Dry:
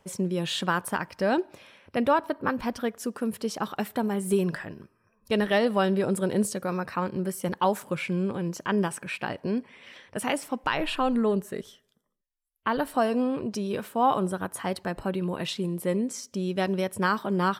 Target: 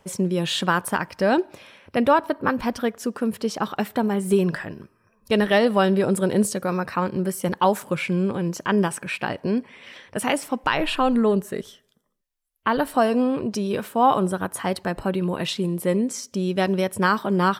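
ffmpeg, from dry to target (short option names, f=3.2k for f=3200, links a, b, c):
-filter_complex "[0:a]asettb=1/sr,asplit=3[a][b][c];[a]atrim=end=2.924[d];[b]atrim=start=2.92:end=4.55,asetpts=PTS-STARTPTS,afade=t=in:d=0.004:c=qsin,afade=t=out:st=1.626:d=0.004:c=qsin,equalizer=f=11k:w=0.77:g=-5[e];[c]atrim=start=4.546[f];[d][e]acrossfade=d=0.004:c1=hsin:c2=qsin[g];[g][f]acrossfade=d=0.004:c1=qsin:c2=hsin,volume=5dB"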